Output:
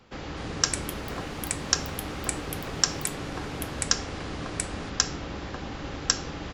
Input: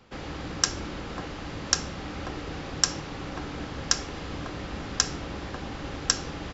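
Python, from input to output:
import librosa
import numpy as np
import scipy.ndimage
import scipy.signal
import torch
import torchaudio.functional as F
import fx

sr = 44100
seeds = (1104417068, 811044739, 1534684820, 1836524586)

y = fx.echo_pitch(x, sr, ms=286, semitones=6, count=3, db_per_echo=-6.0)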